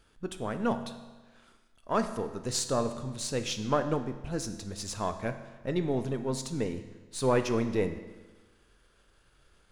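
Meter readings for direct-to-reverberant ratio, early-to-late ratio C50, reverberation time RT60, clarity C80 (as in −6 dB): 8.0 dB, 10.5 dB, 1.3 s, 12.0 dB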